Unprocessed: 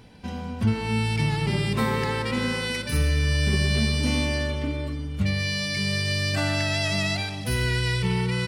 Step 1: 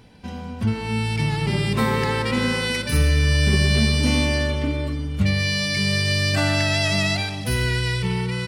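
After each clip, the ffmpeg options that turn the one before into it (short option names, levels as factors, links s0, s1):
-af "dynaudnorm=f=440:g=7:m=1.68"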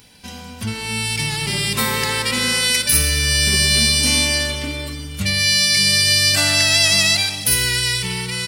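-af "crystalizer=i=9:c=0,volume=0.596"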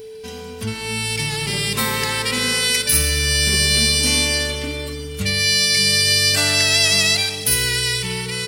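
-af "aeval=exprs='val(0)+0.0251*sin(2*PI*440*n/s)':c=same,volume=0.891"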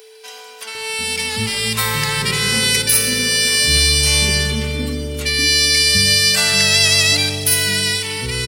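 -filter_complex "[0:a]acrossover=split=550[s0][s1];[s0]adelay=750[s2];[s2][s1]amix=inputs=2:normalize=0,volume=1.33"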